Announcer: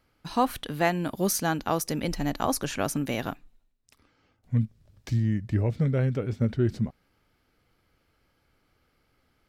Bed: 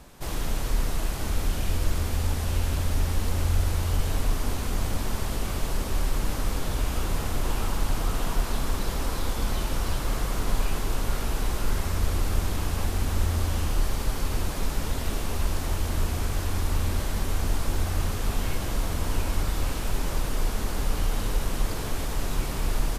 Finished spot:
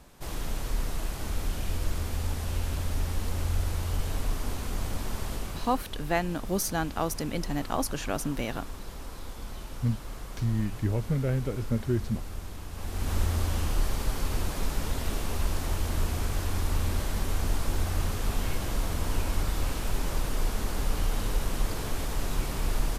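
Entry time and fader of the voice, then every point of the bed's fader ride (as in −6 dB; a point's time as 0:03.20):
5.30 s, −3.0 dB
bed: 0:05.34 −4.5 dB
0:05.89 −12.5 dB
0:12.70 −12.5 dB
0:13.12 −2 dB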